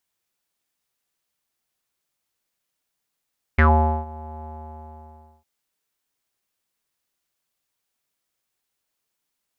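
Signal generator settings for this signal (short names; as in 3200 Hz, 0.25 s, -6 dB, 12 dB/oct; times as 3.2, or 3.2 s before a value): synth note square D#2 12 dB/oct, low-pass 820 Hz, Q 10, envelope 1.5 oct, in 0.12 s, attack 9.6 ms, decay 0.46 s, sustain -23 dB, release 1.00 s, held 0.86 s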